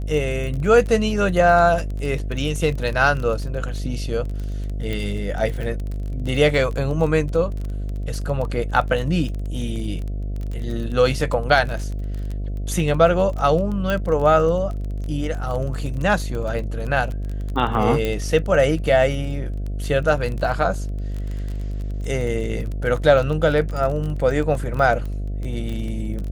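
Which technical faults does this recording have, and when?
buzz 50 Hz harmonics 14 -26 dBFS
crackle 22/s -27 dBFS
4.93 pop -15 dBFS
13.9 pop -11 dBFS
18.05 pop -11 dBFS

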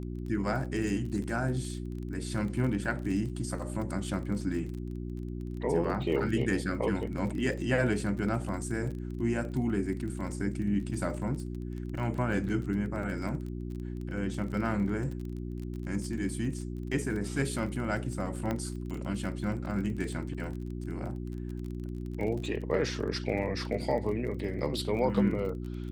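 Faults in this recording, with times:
crackle 29/s -37 dBFS
hum 60 Hz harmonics 6 -37 dBFS
18.51 pop -19 dBFS

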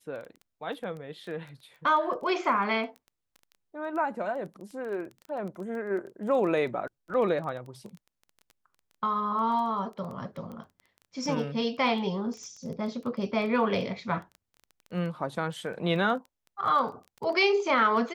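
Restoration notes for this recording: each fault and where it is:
crackle 12/s -36 dBFS

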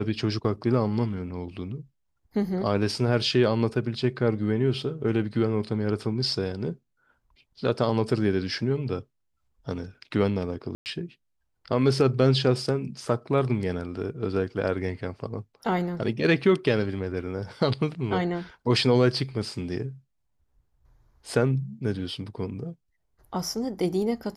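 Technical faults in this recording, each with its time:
10.75–10.86 gap 0.109 s

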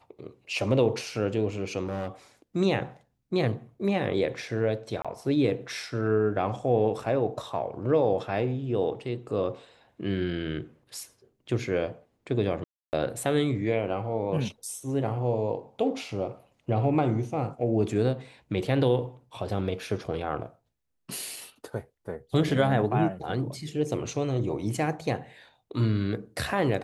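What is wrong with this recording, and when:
1.85–2.08 clipped -27 dBFS
5.02–5.05 gap 26 ms
12.64–12.93 gap 0.289 s

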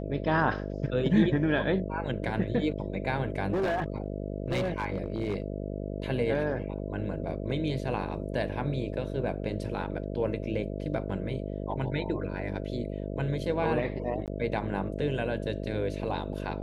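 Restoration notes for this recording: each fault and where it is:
buzz 50 Hz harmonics 13 -35 dBFS
3.52–5.42 clipped -24.5 dBFS
14.26–14.28 gap 18 ms

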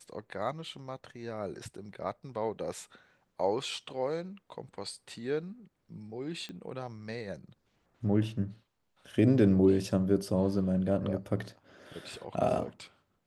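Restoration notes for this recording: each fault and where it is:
6.49 pop -29 dBFS

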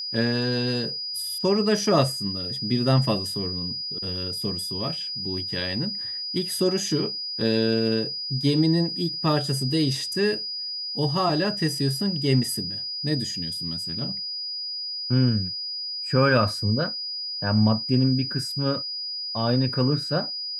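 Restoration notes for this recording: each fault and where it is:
tone 4900 Hz -29 dBFS

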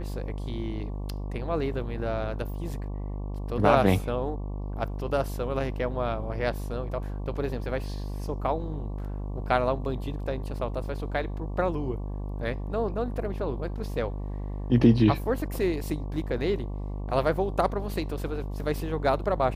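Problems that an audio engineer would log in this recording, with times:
buzz 50 Hz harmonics 23 -33 dBFS
13.17 gap 3 ms

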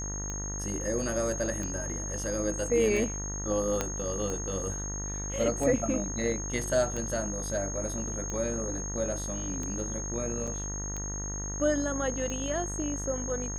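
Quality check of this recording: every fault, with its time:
buzz 50 Hz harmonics 40 -37 dBFS
tick 45 rpm -23 dBFS
tone 6500 Hz -36 dBFS
3.81 pop -13 dBFS
10.47–10.48 gap 5.5 ms

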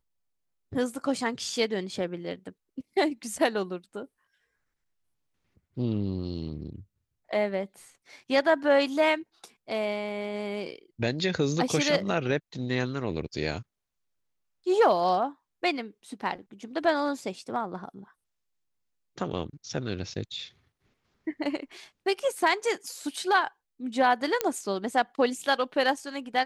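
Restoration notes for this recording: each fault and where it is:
24.41 pop -9 dBFS

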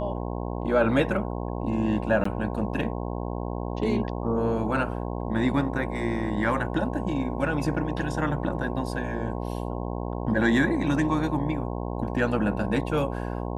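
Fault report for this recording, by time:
buzz 60 Hz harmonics 18 -31 dBFS
2.24–2.25 gap 14 ms

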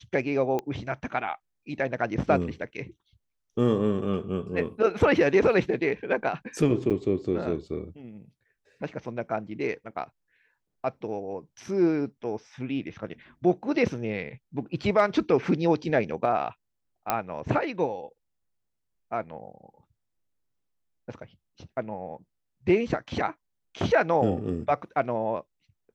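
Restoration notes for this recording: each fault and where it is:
0.59 pop -17 dBFS
6.9–6.91 gap 7.7 ms
17.1 pop -9 dBFS

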